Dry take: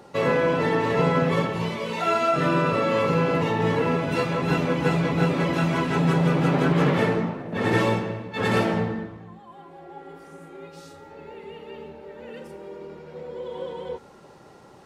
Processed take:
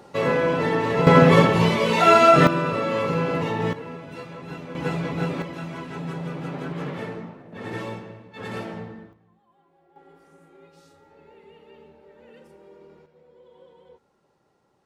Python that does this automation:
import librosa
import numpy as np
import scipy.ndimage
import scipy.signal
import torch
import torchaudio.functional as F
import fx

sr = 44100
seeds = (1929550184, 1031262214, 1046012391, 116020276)

y = fx.gain(x, sr, db=fx.steps((0.0, 0.0), (1.07, 8.5), (2.47, -2.0), (3.73, -13.5), (4.75, -4.5), (5.42, -11.0), (9.13, -18.0), (9.96, -10.0), (13.06, -18.5)))